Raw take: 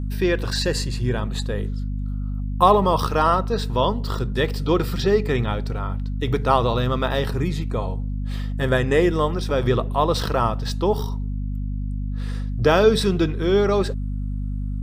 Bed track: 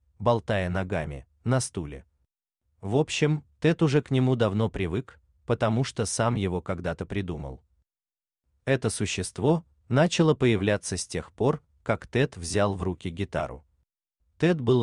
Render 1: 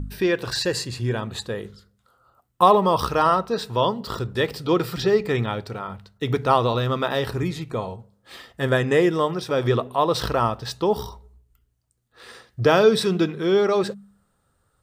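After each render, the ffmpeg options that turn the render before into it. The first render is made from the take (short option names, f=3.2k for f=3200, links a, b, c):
-af "bandreject=f=50:t=h:w=4,bandreject=f=100:t=h:w=4,bandreject=f=150:t=h:w=4,bandreject=f=200:t=h:w=4,bandreject=f=250:t=h:w=4"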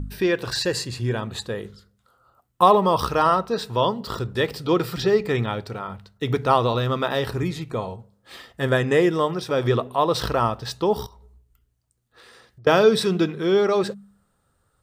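-filter_complex "[0:a]asettb=1/sr,asplit=3[a][b][c];[a]atrim=end=11.064[d];[b]atrim=start=11.06:end=12.67,asetpts=PTS-STARTPTS,afade=t=in:d=0.004:c=qsin,afade=t=out:st=1.606:d=0.004:c=qsin,acompressor=threshold=-45dB:ratio=10:attack=3.2:release=140:knee=1:detection=peak[e];[c]atrim=start=12.666[f];[d][e]acrossfade=d=0.004:c1=hsin:c2=qsin[g];[g][f]acrossfade=d=0.004:c1=qsin:c2=hsin"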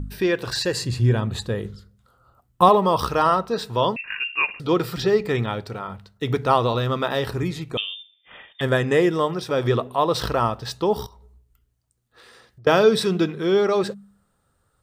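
-filter_complex "[0:a]asettb=1/sr,asplit=3[a][b][c];[a]atrim=end=0.824[d];[b]atrim=start=0.82:end=2.69,asetpts=PTS-STARTPTS,afade=t=in:d=0.004:c=qsin,afade=t=out:st=1.866:d=0.004:c=qsin,lowshelf=f=200:g=11[e];[c]atrim=start=2.686[f];[d][e]acrossfade=d=0.004:c1=hsin:c2=qsin[g];[g][f]acrossfade=d=0.004:c1=qsin:c2=hsin,asettb=1/sr,asplit=3[h][i][j];[h]atrim=end=3.964[k];[i]atrim=start=3.96:end=4.6,asetpts=PTS-STARTPTS,afade=t=in:d=0.004:c=qsin,afade=t=out:st=0.636:d=0.004:c=qsin,lowpass=f=2.5k:t=q:w=0.5098,lowpass=f=2.5k:t=q:w=0.6013,lowpass=f=2.5k:t=q:w=0.9,lowpass=f=2.5k:t=q:w=2.563,afreqshift=-2900[l];[j]atrim=start=4.596[m];[k][l]acrossfade=d=0.004:c1=hsin:c2=qsin[n];[n][m]acrossfade=d=0.004:c1=qsin:c2=hsin,asettb=1/sr,asplit=3[o][p][q];[o]atrim=end=7.774[r];[p]atrim=start=7.77:end=8.61,asetpts=PTS-STARTPTS,afade=t=in:d=0.004:c=qsin,afade=t=out:st=0.836:d=0.004:c=qsin,lowpass=f=3.1k:t=q:w=0.5098,lowpass=f=3.1k:t=q:w=0.6013,lowpass=f=3.1k:t=q:w=0.9,lowpass=f=3.1k:t=q:w=2.563,afreqshift=-3700[s];[q]atrim=start=8.606[t];[r][s]acrossfade=d=0.004:c1=hsin:c2=qsin[u];[u][t]acrossfade=d=0.004:c1=qsin:c2=hsin"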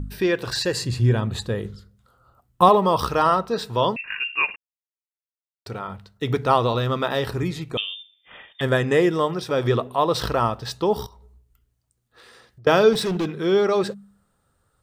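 -filter_complex "[0:a]asettb=1/sr,asplit=3[a][b][c];[a]atrim=end=12.934[d];[b]atrim=start=12.93:end=13.4,asetpts=PTS-STARTPTS,afade=t=in:d=0.004:c=qsin,afade=t=out:st=0.466:d=0.004:c=qsin,asoftclip=type=hard:threshold=-20.5dB[e];[c]atrim=start=13.396[f];[d][e]acrossfade=d=0.004:c1=hsin:c2=qsin[g];[g][f]acrossfade=d=0.004:c1=qsin:c2=hsin,asplit=3[h][i][j];[h]atrim=end=4.56,asetpts=PTS-STARTPTS,afade=t=out:st=4.556:d=0.004:c=hsin[k];[i]atrim=start=4.56:end=5.66,asetpts=PTS-STARTPTS,volume=0[l];[j]atrim=start=5.66,asetpts=PTS-STARTPTS,afade=t=in:d=0.004:c=hsin[m];[k][l][m]concat=n=3:v=0:a=1"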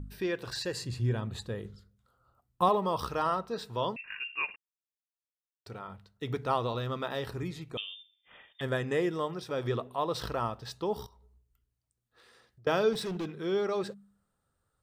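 -af "volume=-11dB"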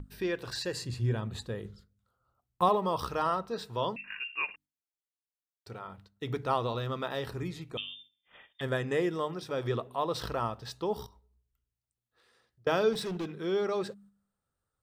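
-af "bandreject=f=49.64:t=h:w=4,bandreject=f=99.28:t=h:w=4,bandreject=f=148.92:t=h:w=4,bandreject=f=198.56:t=h:w=4,bandreject=f=248.2:t=h:w=4,bandreject=f=297.84:t=h:w=4,agate=range=-7dB:threshold=-56dB:ratio=16:detection=peak"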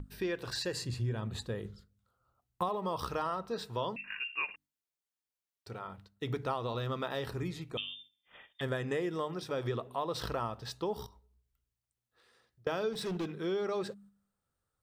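-af "acompressor=threshold=-30dB:ratio=6"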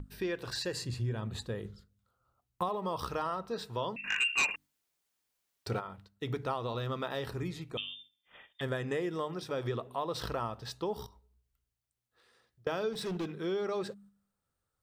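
-filter_complex "[0:a]asplit=3[a][b][c];[a]afade=t=out:st=4.03:d=0.02[d];[b]aeval=exprs='0.0668*sin(PI/2*2.24*val(0)/0.0668)':c=same,afade=t=in:st=4.03:d=0.02,afade=t=out:st=5.79:d=0.02[e];[c]afade=t=in:st=5.79:d=0.02[f];[d][e][f]amix=inputs=3:normalize=0"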